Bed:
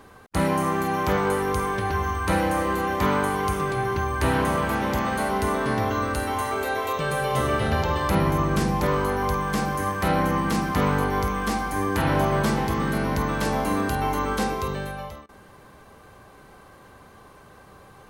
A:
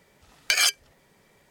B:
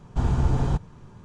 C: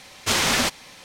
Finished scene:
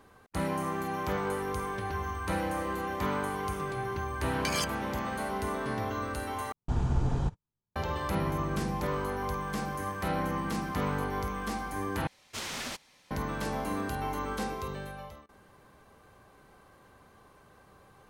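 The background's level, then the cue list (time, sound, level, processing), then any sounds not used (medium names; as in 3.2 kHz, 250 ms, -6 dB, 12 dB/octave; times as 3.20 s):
bed -9 dB
3.95 s: add A -12.5 dB
6.52 s: replace with B -6 dB + gate -37 dBFS, range -39 dB
12.07 s: replace with C -16.5 dB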